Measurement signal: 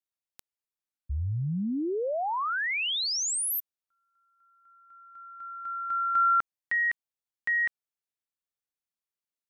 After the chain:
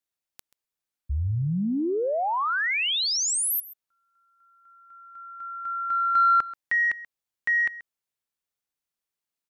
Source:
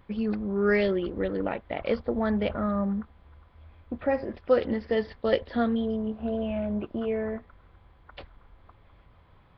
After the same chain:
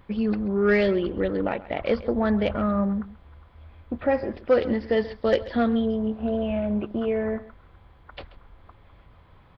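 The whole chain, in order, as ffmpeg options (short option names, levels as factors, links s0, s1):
-af "aeval=exprs='0.355*sin(PI/2*1.41*val(0)/0.355)':c=same,aecho=1:1:133:0.133,volume=0.708"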